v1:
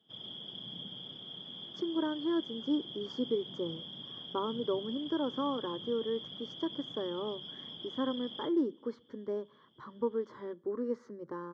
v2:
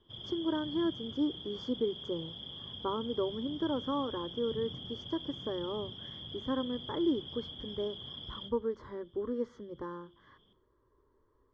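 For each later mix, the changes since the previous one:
speech: entry -1.50 s; master: remove high-pass 150 Hz 24 dB/octave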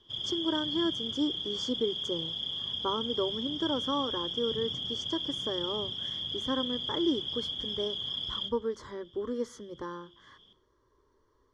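master: remove tape spacing loss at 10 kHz 32 dB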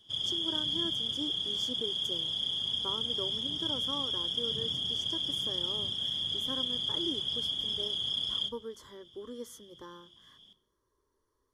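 speech -9.5 dB; master: remove distance through air 120 m

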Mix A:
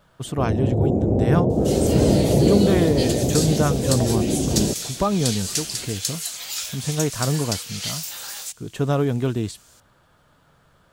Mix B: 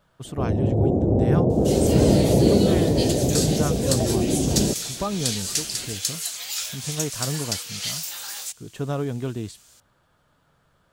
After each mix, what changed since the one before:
speech -6.0 dB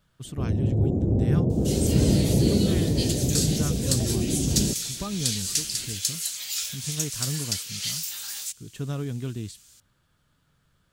master: add peaking EQ 710 Hz -12 dB 2.1 oct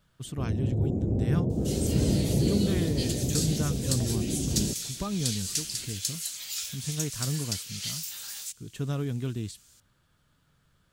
first sound -4.5 dB; second sound -4.5 dB

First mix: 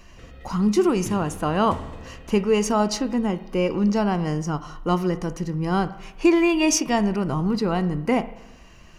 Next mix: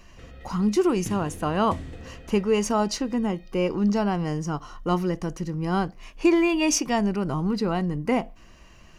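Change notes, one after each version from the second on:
reverb: off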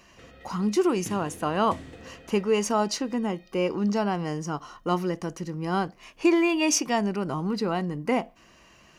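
master: add high-pass 220 Hz 6 dB/octave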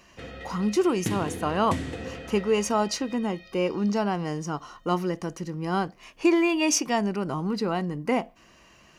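background +10.0 dB

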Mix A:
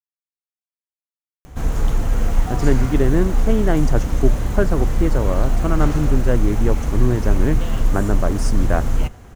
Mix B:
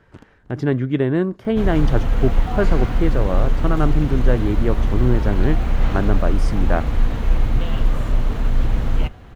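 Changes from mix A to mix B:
speech: entry -2.00 s; master: add resonant high shelf 5 kHz -9.5 dB, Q 1.5

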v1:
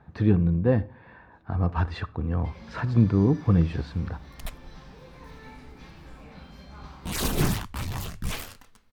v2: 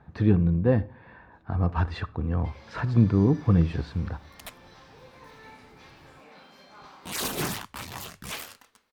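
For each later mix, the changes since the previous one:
first sound: add high-pass 370 Hz 12 dB/octave; second sound: add high-pass 430 Hz 6 dB/octave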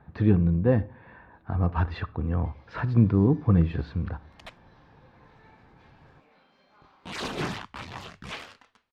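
first sound -10.0 dB; master: add low-pass 3.8 kHz 12 dB/octave

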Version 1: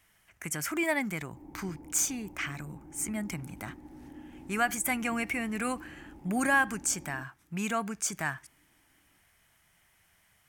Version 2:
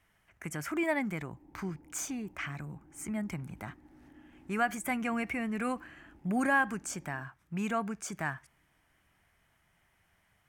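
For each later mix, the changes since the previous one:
background -9.0 dB; master: add treble shelf 2.9 kHz -11.5 dB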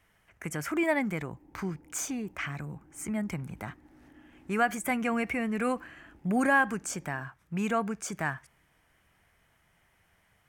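speech +3.0 dB; master: add peaking EQ 480 Hz +4.5 dB 0.34 oct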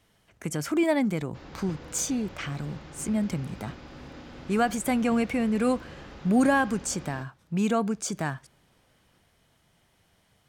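background: remove cascade formant filter u; master: add graphic EQ 125/250/500/2000/4000/8000 Hz +4/+5/+4/-6/+10/+3 dB

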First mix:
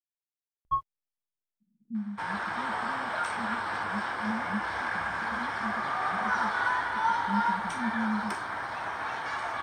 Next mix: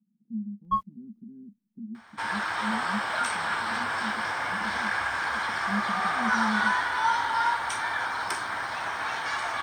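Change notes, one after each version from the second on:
speech: entry -1.60 s; master: add treble shelf 2 kHz +10 dB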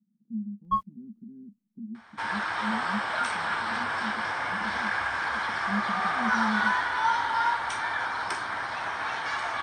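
second sound: add distance through air 53 m

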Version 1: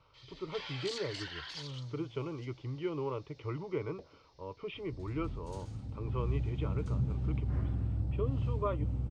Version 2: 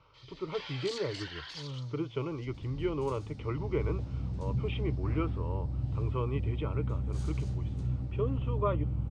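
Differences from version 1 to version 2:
speech +3.5 dB; second sound: entry -2.45 s

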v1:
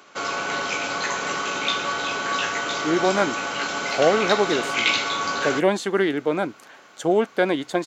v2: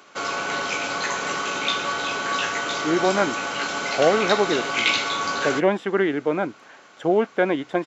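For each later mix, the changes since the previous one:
speech: add Savitzky-Golay filter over 25 samples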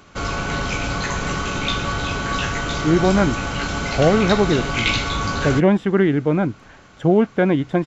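master: remove high-pass 390 Hz 12 dB/octave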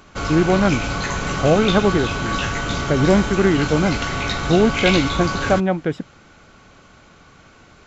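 speech: entry -2.55 s

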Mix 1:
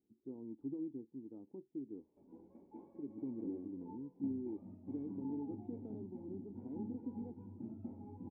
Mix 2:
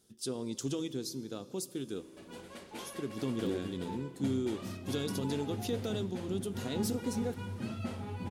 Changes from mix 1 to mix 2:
speech: send on; master: remove cascade formant filter u

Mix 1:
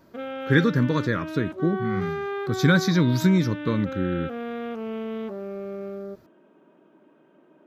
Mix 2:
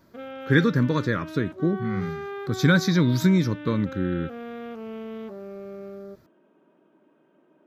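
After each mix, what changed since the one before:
background -4.5 dB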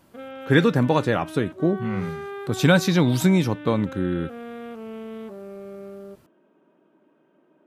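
speech: remove static phaser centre 2.8 kHz, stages 6

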